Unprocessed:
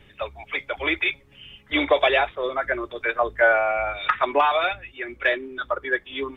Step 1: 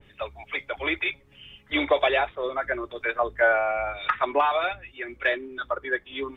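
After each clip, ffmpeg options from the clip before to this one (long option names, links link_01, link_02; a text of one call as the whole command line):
ffmpeg -i in.wav -af "adynamicequalizer=threshold=0.0251:dfrequency=1800:dqfactor=0.7:tfrequency=1800:tqfactor=0.7:attack=5:release=100:ratio=0.375:range=2:mode=cutabove:tftype=highshelf,volume=-2.5dB" out.wav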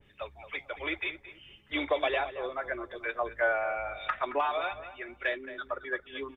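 ffmpeg -i in.wav -filter_complex "[0:a]asplit=2[link_01][link_02];[link_02]adelay=222,lowpass=frequency=2200:poles=1,volume=-12dB,asplit=2[link_03][link_04];[link_04]adelay=222,lowpass=frequency=2200:poles=1,volume=0.27,asplit=2[link_05][link_06];[link_06]adelay=222,lowpass=frequency=2200:poles=1,volume=0.27[link_07];[link_01][link_03][link_05][link_07]amix=inputs=4:normalize=0,volume=-7dB" out.wav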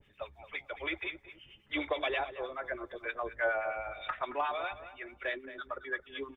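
ffmpeg -i in.wav -filter_complex "[0:a]acrossover=split=1100[link_01][link_02];[link_01]aeval=exprs='val(0)*(1-0.7/2+0.7/2*cos(2*PI*9.5*n/s))':channel_layout=same[link_03];[link_02]aeval=exprs='val(0)*(1-0.7/2-0.7/2*cos(2*PI*9.5*n/s))':channel_layout=same[link_04];[link_03][link_04]amix=inputs=2:normalize=0" out.wav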